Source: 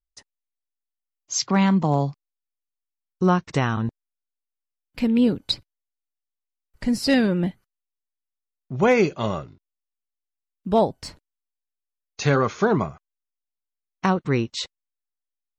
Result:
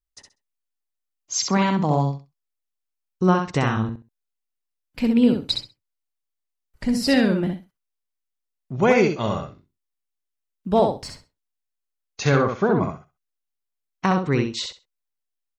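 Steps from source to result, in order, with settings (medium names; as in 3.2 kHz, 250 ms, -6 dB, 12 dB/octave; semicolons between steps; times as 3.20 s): 12.37–12.83 s: low-pass 1.5 kHz 6 dB/octave; on a send: feedback delay 65 ms, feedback 18%, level -5 dB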